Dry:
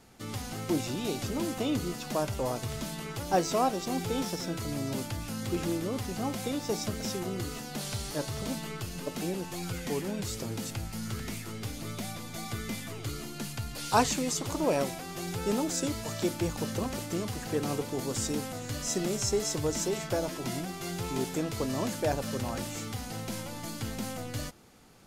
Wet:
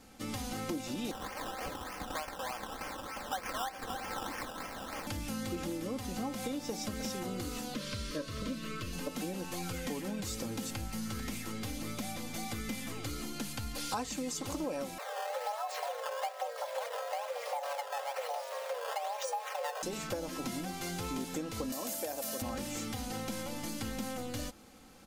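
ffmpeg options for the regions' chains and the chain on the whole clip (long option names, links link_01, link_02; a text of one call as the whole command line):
ffmpeg -i in.wav -filter_complex "[0:a]asettb=1/sr,asplit=3[link_01][link_02][link_03];[link_01]atrim=end=1.114[link_04];[link_02]atrim=start=1.11:end=5.07,asetpts=PTS-STARTPTS,afade=type=in:duration=0.004:curve=qsin,afade=type=out:start_time=3.956:duration=0.004:curve=qsin,highpass=frequency=760:width=0.5412,highpass=frequency=760:width=1.3066,acrusher=samples=16:mix=1:aa=0.000001:lfo=1:lforange=9.6:lforate=3.3[link_05];[link_03]atrim=start=5.066[link_06];[link_04][link_05]acrossfade=duration=0.004:curve1=hsin:curve2=qsin[link_07];[link_07][link_06]acrossfade=duration=0.004:curve1=qsin:curve2=hsin,asettb=1/sr,asplit=3[link_08][link_09][link_10];[link_08]atrim=end=7.744[link_11];[link_09]atrim=start=7.74:end=8.93,asetpts=PTS-STARTPTS,afade=type=in:duration=0.004:curve=qsin,afade=type=out:start_time=1.186:duration=0.004:curve=qsin,acrossover=split=5200[link_12][link_13];[link_13]acompressor=threshold=-53dB:ratio=4:attack=1:release=60[link_14];[link_12][link_14]amix=inputs=2:normalize=0,asuperstop=centerf=810:order=12:qfactor=2.7[link_15];[link_10]atrim=start=8.926[link_16];[link_11][link_15]acrossfade=duration=0.004:curve1=hsin:curve2=qsin[link_17];[link_17][link_16]acrossfade=duration=0.004:curve1=qsin:curve2=hsin,asettb=1/sr,asplit=3[link_18][link_19][link_20];[link_18]atrim=end=14.984[link_21];[link_19]atrim=start=14.98:end=19.83,asetpts=PTS-STARTPTS,afade=type=in:duration=0.004:curve=qsin,afade=type=out:start_time=4.846:duration=0.004:curve=qsin,lowpass=5300,acrusher=samples=14:mix=1:aa=0.000001:lfo=1:lforange=22.4:lforate=1.1,afreqshift=420[link_22];[link_20]atrim=start=19.826[link_23];[link_21][link_22]acrossfade=duration=0.004:curve1=hsin:curve2=qsin[link_24];[link_24][link_23]acrossfade=duration=0.004:curve1=qsin:curve2=hsin,asettb=1/sr,asplit=3[link_25][link_26][link_27];[link_25]atrim=end=21.724[link_28];[link_26]atrim=start=21.72:end=22.42,asetpts=PTS-STARTPTS,afade=type=in:duration=0.004:curve=qsin,afade=type=out:start_time=0.696:duration=0.004:curve=qsin,acrossover=split=240|1000[link_29][link_30][link_31];[link_29]acompressor=threshold=-41dB:ratio=4[link_32];[link_30]acompressor=threshold=-30dB:ratio=4[link_33];[link_31]acompressor=threshold=-47dB:ratio=4[link_34];[link_32][link_33][link_34]amix=inputs=3:normalize=0,aeval=exprs='val(0)+0.0178*sin(2*PI*670*n/s)':channel_layout=same,aemphasis=mode=production:type=riaa[link_35];[link_27]atrim=start=22.416[link_36];[link_28][link_35]acrossfade=duration=0.004:curve1=hsin:curve2=qsin[link_37];[link_37][link_36]acrossfade=duration=0.004:curve1=qsin:curve2=hsin,aecho=1:1:3.8:0.54,acompressor=threshold=-34dB:ratio=6" out.wav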